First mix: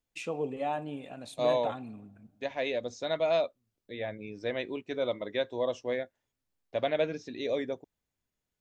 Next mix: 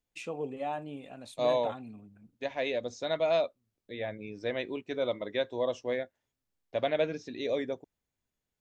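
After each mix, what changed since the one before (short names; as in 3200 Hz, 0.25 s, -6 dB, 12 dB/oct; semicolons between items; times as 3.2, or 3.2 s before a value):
reverb: off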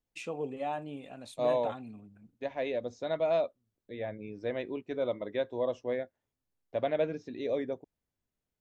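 second voice: add high shelf 2100 Hz -11 dB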